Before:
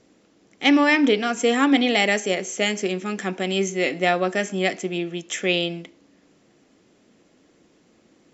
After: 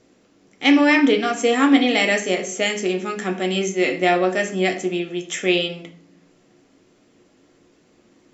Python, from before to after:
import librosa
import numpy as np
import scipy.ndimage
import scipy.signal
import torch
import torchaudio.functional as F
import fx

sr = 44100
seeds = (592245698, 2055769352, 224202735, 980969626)

y = fx.room_shoebox(x, sr, seeds[0], volume_m3=51.0, walls='mixed', distance_m=0.39)